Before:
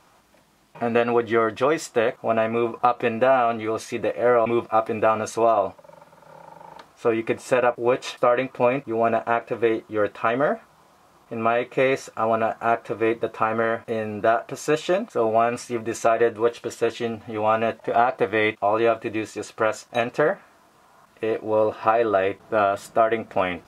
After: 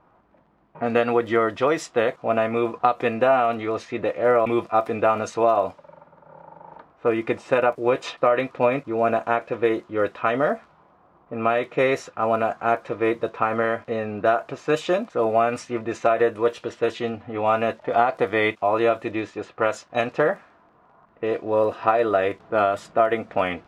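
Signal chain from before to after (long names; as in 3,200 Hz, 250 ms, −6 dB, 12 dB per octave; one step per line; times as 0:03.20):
surface crackle 15 per second −38 dBFS
low-pass that shuts in the quiet parts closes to 1,200 Hz, open at −17 dBFS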